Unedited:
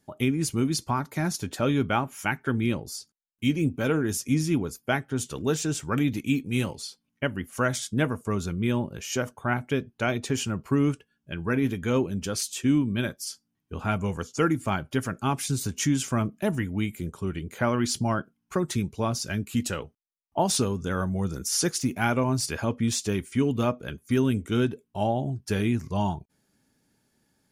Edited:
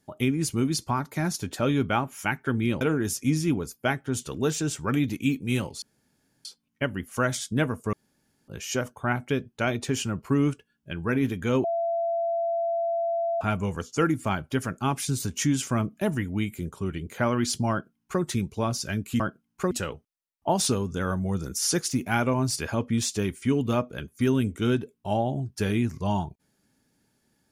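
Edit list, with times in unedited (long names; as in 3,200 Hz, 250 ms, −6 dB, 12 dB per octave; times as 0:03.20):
0:02.81–0:03.85: remove
0:06.86: splice in room tone 0.63 s
0:08.34–0:08.89: fill with room tone
0:12.05–0:13.82: beep over 675 Hz −23.5 dBFS
0:18.12–0:18.63: duplicate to 0:19.61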